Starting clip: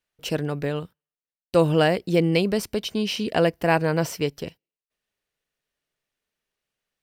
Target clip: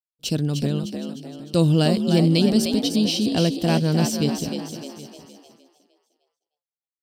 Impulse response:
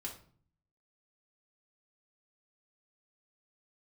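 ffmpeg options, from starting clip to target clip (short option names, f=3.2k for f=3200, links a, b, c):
-filter_complex "[0:a]asplit=2[a][b];[b]asplit=6[c][d][e][f][g][h];[c]adelay=304,afreqshift=61,volume=-6dB[i];[d]adelay=608,afreqshift=122,volume=-12.7dB[j];[e]adelay=912,afreqshift=183,volume=-19.5dB[k];[f]adelay=1216,afreqshift=244,volume=-26.2dB[l];[g]adelay=1520,afreqshift=305,volume=-33dB[m];[h]adelay=1824,afreqshift=366,volume=-39.7dB[n];[i][j][k][l][m][n]amix=inputs=6:normalize=0[o];[a][o]amix=inputs=2:normalize=0,agate=range=-33dB:threshold=-48dB:ratio=3:detection=peak,equalizer=f=125:t=o:w=1:g=6,equalizer=f=250:t=o:w=1:g=6,equalizer=f=500:t=o:w=1:g=-5,equalizer=f=1k:t=o:w=1:g=-6,equalizer=f=2k:t=o:w=1:g=-11,equalizer=f=4k:t=o:w=1:g=9,equalizer=f=8k:t=o:w=1:g=5,asplit=2[p][q];[q]aecho=0:1:768:0.112[r];[p][r]amix=inputs=2:normalize=0"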